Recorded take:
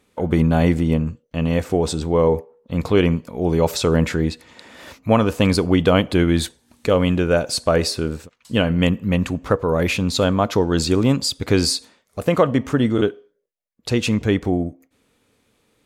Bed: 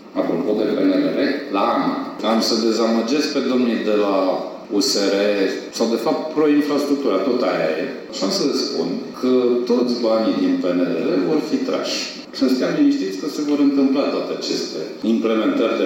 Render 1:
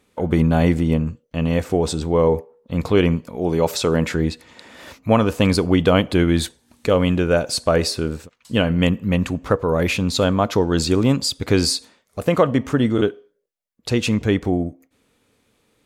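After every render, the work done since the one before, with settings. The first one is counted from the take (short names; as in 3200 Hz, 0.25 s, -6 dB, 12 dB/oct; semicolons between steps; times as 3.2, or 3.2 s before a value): 3.36–4.15 low shelf 91 Hz -10.5 dB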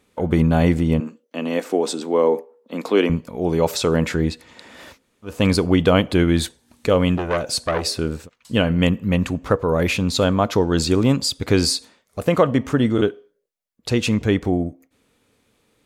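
1–3.1 steep high-pass 220 Hz; 4.94–5.34 room tone, crossfade 0.24 s; 7.17–7.99 core saturation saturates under 1300 Hz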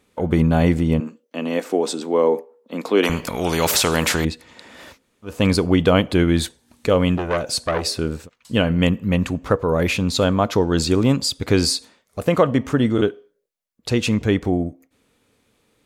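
3.03–4.25 spectral compressor 2:1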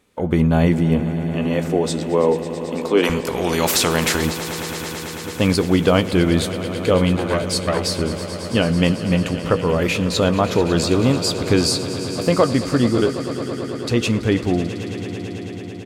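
doubler 17 ms -14 dB; swelling echo 0.11 s, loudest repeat 5, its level -16 dB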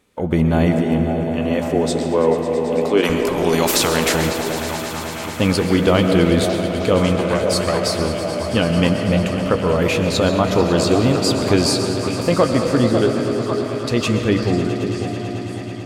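delay with a stepping band-pass 0.547 s, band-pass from 560 Hz, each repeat 0.7 oct, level -4 dB; digital reverb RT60 2.6 s, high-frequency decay 0.25×, pre-delay 90 ms, DRR 6 dB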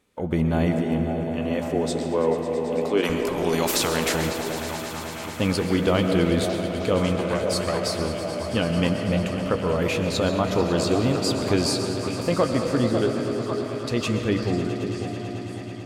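gain -6 dB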